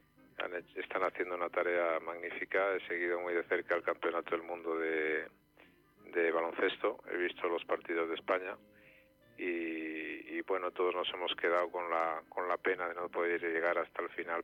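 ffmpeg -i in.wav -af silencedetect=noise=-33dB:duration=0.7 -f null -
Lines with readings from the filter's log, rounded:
silence_start: 5.22
silence_end: 6.16 | silence_duration: 0.94
silence_start: 8.53
silence_end: 9.41 | silence_duration: 0.89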